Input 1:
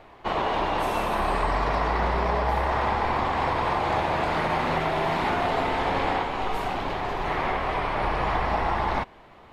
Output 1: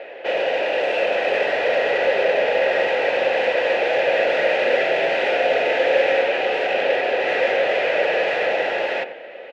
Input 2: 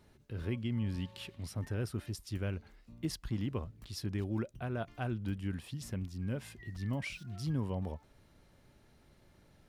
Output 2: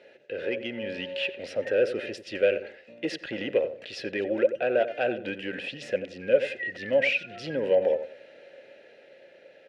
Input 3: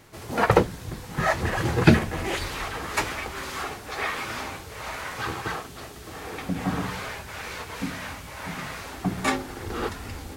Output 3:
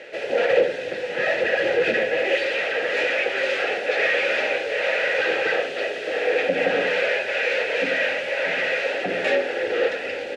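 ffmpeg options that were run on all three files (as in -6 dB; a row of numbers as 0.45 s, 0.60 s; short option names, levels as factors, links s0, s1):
-filter_complex "[0:a]asplit=2[s0][s1];[s1]highpass=f=720:p=1,volume=63.1,asoftclip=type=tanh:threshold=0.891[s2];[s0][s2]amix=inputs=2:normalize=0,lowpass=f=4200:p=1,volume=0.501,lowpass=9500,dynaudnorm=f=190:g=11:m=1.58,asplit=3[s3][s4][s5];[s3]bandpass=f=530:t=q:w=8,volume=1[s6];[s4]bandpass=f=1840:t=q:w=8,volume=0.501[s7];[s5]bandpass=f=2480:t=q:w=8,volume=0.355[s8];[s6][s7][s8]amix=inputs=3:normalize=0,bandreject=f=1800:w=11,asplit=2[s9][s10];[s10]adelay=89,lowpass=f=1200:p=1,volume=0.316,asplit=2[s11][s12];[s12]adelay=89,lowpass=f=1200:p=1,volume=0.28,asplit=2[s13][s14];[s14]adelay=89,lowpass=f=1200:p=1,volume=0.28[s15];[s11][s13][s15]amix=inputs=3:normalize=0[s16];[s9][s16]amix=inputs=2:normalize=0"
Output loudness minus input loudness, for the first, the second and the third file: +6.0 LU, +10.5 LU, +6.0 LU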